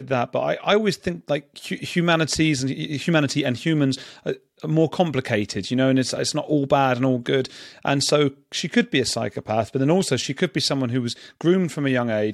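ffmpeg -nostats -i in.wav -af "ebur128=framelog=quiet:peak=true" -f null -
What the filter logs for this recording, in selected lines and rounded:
Integrated loudness:
  I:         -22.2 LUFS
  Threshold: -32.2 LUFS
Loudness range:
  LRA:         1.1 LU
  Threshold: -42.1 LUFS
  LRA low:   -22.7 LUFS
  LRA high:  -21.5 LUFS
True peak:
  Peak:       -5.7 dBFS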